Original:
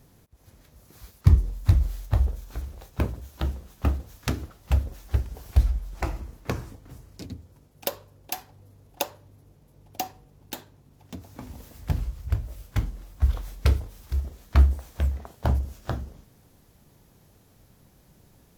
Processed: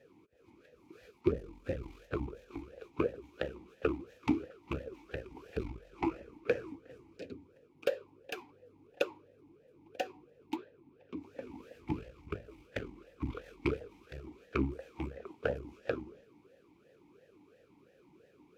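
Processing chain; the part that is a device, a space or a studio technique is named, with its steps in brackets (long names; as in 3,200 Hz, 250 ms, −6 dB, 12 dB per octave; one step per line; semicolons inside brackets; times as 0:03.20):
talk box (tube saturation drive 19 dB, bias 0.75; formant filter swept between two vowels e-u 2.9 Hz)
0:10.56–0:11.17: high-frequency loss of the air 130 metres
level +14.5 dB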